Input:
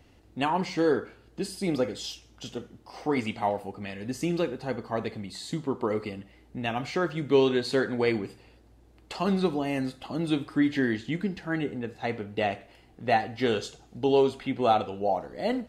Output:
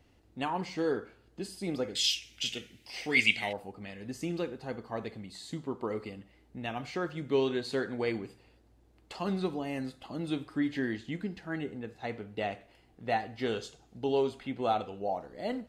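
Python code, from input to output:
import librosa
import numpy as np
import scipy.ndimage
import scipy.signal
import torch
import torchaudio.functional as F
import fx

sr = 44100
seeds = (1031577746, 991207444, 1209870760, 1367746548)

y = fx.high_shelf_res(x, sr, hz=1600.0, db=13.0, q=3.0, at=(1.95, 3.53))
y = y * librosa.db_to_amplitude(-6.5)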